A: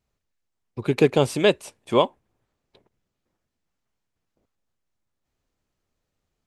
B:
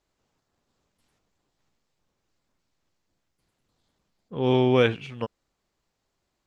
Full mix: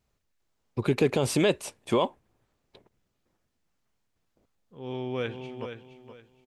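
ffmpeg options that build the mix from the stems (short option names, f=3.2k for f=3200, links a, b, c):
-filter_complex "[0:a]volume=2.5dB,asplit=2[a][b];[1:a]adelay=400,volume=-6.5dB,asplit=2[c][d];[d]volume=-13.5dB[e];[b]apad=whole_len=302629[f];[c][f]sidechaincompress=threshold=-53dB:ratio=4:attack=26:release=1430[g];[e]aecho=0:1:470|940|1410|1880:1|0.26|0.0676|0.0176[h];[a][g][h]amix=inputs=3:normalize=0,alimiter=limit=-13.5dB:level=0:latency=1:release=39"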